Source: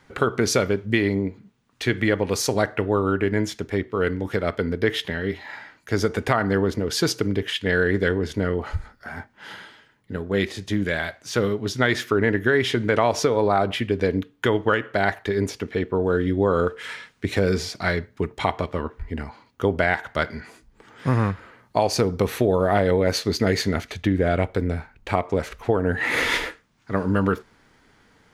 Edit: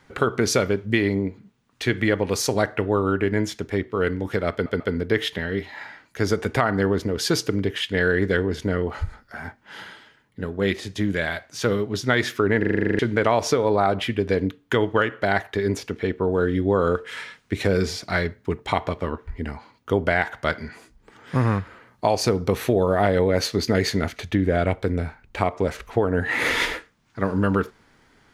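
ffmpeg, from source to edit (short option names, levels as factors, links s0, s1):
-filter_complex "[0:a]asplit=13[s0][s1][s2][s3][s4][s5][s6][s7][s8][s9][s10][s11][s12];[s0]atrim=end=4.662[s13];[s1]atrim=start=4.518:end=4.662[s14];[s2]atrim=start=4.518:end=12.352[s15];[s3]atrim=start=12.308:end=12.352[s16];[s4]atrim=start=12.308:end=12.352[s17];[s5]atrim=start=12.308:end=12.352[s18];[s6]atrim=start=12.308:end=12.352[s19];[s7]atrim=start=12.308:end=12.352[s20];[s8]atrim=start=12.308:end=12.352[s21];[s9]atrim=start=12.308:end=12.352[s22];[s10]atrim=start=12.308:end=12.352[s23];[s11]atrim=start=12.308:end=12.352[s24];[s12]atrim=start=12.708[s25];[s13][s14]acrossfade=d=0.004:c1=hsin:c2=hsin[s26];[s26][s15]acrossfade=d=0.004:c1=hsin:c2=hsin[s27];[s27][s16]acrossfade=d=0.004:c1=hsin:c2=hsin[s28];[s28][s17]acrossfade=d=0.004:c1=hsin:c2=hsin[s29];[s29][s18]acrossfade=d=0.004:c1=hsin:c2=hsin[s30];[s30][s19]acrossfade=d=0.004:c1=hsin:c2=hsin[s31];[s31][s20]acrossfade=d=0.004:c1=hsin:c2=hsin[s32];[s32][s21]acrossfade=d=0.004:c1=hsin:c2=hsin[s33];[s33][s22]acrossfade=d=0.004:c1=hsin:c2=hsin[s34];[s34][s23]acrossfade=d=0.004:c1=hsin:c2=hsin[s35];[s35][s24]acrossfade=d=0.004:c1=hsin:c2=hsin[s36];[s36][s25]acrossfade=d=0.004:c1=hsin:c2=hsin"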